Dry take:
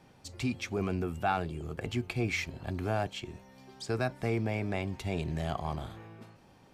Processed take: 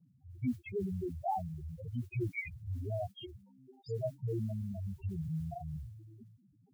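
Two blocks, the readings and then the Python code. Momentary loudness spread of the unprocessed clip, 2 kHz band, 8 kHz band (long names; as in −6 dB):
14 LU, −10.0 dB, below −15 dB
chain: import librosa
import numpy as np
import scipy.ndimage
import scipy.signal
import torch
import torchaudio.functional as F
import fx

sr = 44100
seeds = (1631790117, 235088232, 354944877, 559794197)

y = fx.spec_topn(x, sr, count=2)
y = fx.mod_noise(y, sr, seeds[0], snr_db=34)
y = fx.dispersion(y, sr, late='highs', ms=46.0, hz=1100.0)
y = y * 10.0 ** (1.0 / 20.0)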